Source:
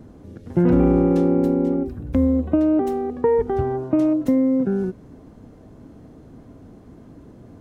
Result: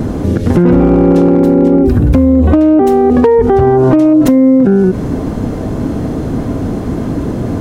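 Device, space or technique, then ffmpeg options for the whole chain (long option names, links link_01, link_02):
loud club master: -af "acompressor=threshold=-21dB:ratio=3,asoftclip=type=hard:threshold=-16.5dB,alimiter=level_in=28.5dB:limit=-1dB:release=50:level=0:latency=1,volume=-1dB"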